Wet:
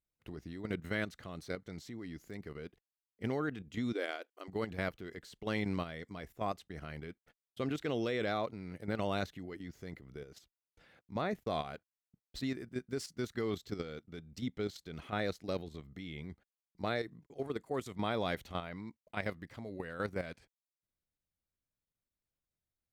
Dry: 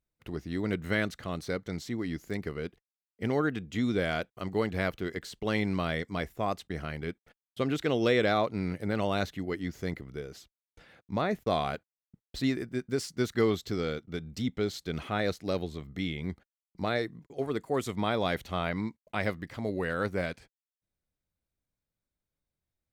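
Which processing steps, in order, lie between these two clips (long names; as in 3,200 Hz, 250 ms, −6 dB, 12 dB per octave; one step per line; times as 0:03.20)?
output level in coarse steps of 10 dB
0:03.93–0:04.48: linear-phase brick-wall high-pass 260 Hz
level −4 dB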